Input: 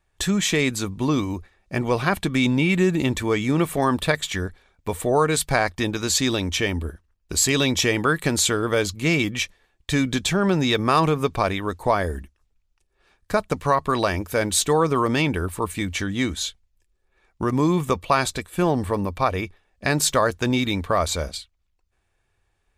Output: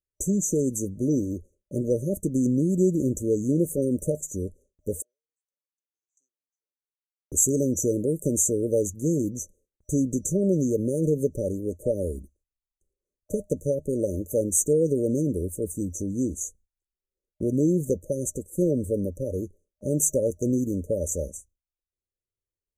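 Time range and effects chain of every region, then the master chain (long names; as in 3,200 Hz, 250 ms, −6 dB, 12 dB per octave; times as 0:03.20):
0:05.02–0:07.32: downward compressor 10 to 1, threshold −33 dBFS + amplitude tremolo 4.2 Hz, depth 62% + four-pole ladder band-pass 2,400 Hz, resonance 60%
whole clip: brick-wall band-stop 610–5,900 Hz; low-shelf EQ 180 Hz −5.5 dB; noise gate with hold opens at −54 dBFS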